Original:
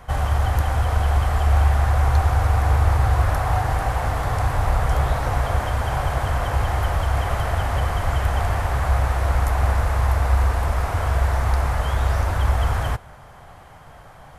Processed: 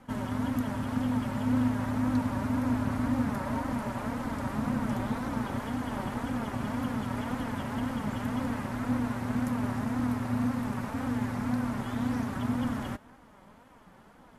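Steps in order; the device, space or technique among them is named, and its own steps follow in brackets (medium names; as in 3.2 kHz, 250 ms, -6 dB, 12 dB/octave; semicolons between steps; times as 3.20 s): alien voice (ring modulator 180 Hz; flange 1.9 Hz, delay 3.7 ms, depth 1.7 ms, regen +38%); trim -4.5 dB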